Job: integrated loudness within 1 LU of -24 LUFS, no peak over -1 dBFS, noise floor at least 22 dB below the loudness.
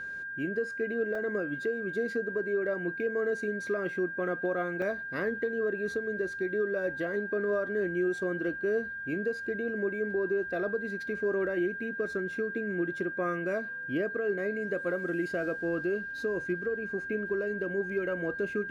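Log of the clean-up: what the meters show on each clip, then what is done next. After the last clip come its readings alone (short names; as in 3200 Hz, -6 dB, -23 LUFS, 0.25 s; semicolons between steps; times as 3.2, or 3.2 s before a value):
dropouts 2; longest dropout 2.2 ms; steady tone 1600 Hz; tone level -36 dBFS; loudness -31.5 LUFS; peak -21.0 dBFS; loudness target -24.0 LUFS
-> interpolate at 1.15/4.82, 2.2 ms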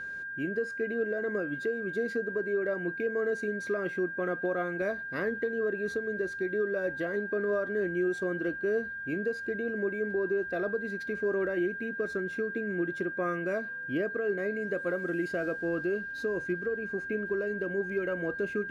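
dropouts 0; steady tone 1600 Hz; tone level -36 dBFS
-> notch 1600 Hz, Q 30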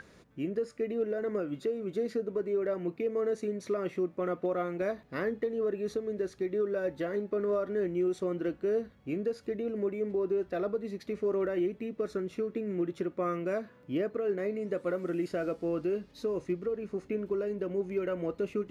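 steady tone none; loudness -33.0 LUFS; peak -22.0 dBFS; loudness target -24.0 LUFS
-> gain +9 dB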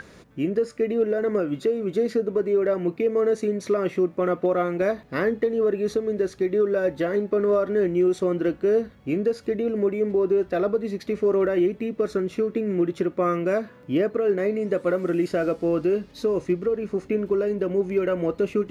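loudness -24.0 LUFS; peak -13.0 dBFS; noise floor -49 dBFS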